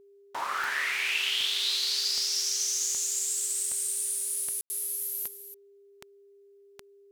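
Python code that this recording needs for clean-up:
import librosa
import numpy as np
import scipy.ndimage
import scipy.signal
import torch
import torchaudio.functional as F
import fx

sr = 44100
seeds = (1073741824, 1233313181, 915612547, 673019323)

y = fx.fix_declick_ar(x, sr, threshold=10.0)
y = fx.notch(y, sr, hz=400.0, q=30.0)
y = fx.fix_ambience(y, sr, seeds[0], print_start_s=6.06, print_end_s=6.56, start_s=4.61, end_s=4.7)
y = fx.fix_echo_inverse(y, sr, delay_ms=266, level_db=-11.5)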